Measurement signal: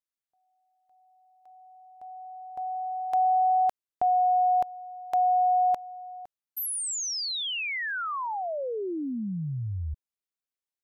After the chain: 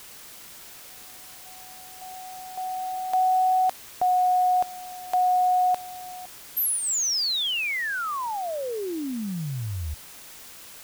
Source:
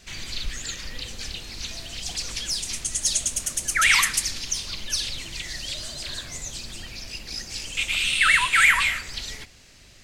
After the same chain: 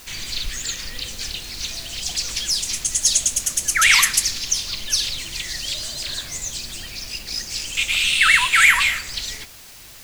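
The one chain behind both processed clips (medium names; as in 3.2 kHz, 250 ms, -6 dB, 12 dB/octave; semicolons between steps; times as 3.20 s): treble shelf 2.6 kHz +6.5 dB; in parallel at -6 dB: word length cut 6-bit, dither triangular; on the sum: dynamic bell 8.9 kHz, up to -6 dB, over -38 dBFS, Q 5.9; trim -2.5 dB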